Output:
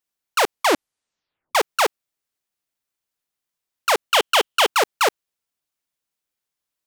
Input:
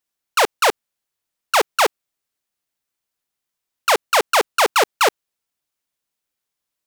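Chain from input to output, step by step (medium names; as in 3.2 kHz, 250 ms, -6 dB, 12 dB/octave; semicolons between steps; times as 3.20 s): 0.42 s: tape stop 1.13 s; 4.10–4.67 s: peaking EQ 3.1 kHz +11.5 dB 0.32 oct; trim -2.5 dB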